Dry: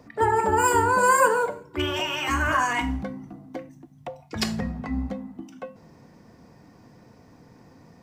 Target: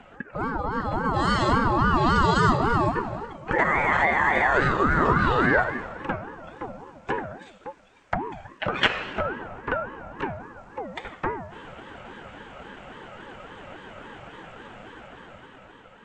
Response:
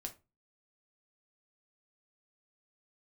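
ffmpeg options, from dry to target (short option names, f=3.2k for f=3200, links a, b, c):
-filter_complex "[0:a]acrossover=split=190|4300[a][b][c];[a]asoftclip=type=hard:threshold=-34.5dB[d];[d][b][c]amix=inputs=3:normalize=0,asetrate=22050,aresample=44100,equalizer=f=1k:t=o:w=1:g=11,equalizer=f=2k:t=o:w=1:g=11,equalizer=f=4k:t=o:w=1:g=-4,acompressor=threshold=-36dB:ratio=2.5,afftfilt=real='re*between(b*sr/4096,140,9300)':imag='im*between(b*sr/4096,140,9300)':win_size=4096:overlap=0.75,dynaudnorm=f=330:g=7:m=8dB,aeval=exprs='val(0)*sin(2*PI*530*n/s+530*0.35/3.6*sin(2*PI*3.6*n/s))':c=same,volume=5.5dB"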